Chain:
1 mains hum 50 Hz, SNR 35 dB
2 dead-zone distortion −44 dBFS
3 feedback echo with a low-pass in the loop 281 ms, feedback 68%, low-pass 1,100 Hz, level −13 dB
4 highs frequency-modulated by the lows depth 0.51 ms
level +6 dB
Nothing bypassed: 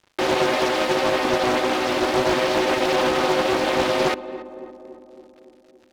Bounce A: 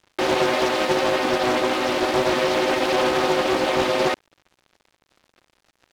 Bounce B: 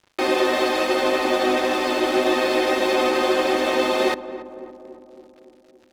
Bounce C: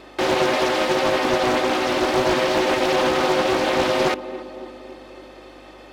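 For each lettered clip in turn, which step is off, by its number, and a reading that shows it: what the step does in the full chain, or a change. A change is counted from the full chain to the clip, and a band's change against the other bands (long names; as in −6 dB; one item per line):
3, change in momentary loudness spread −10 LU
4, 8 kHz band −1.5 dB
2, distortion level −22 dB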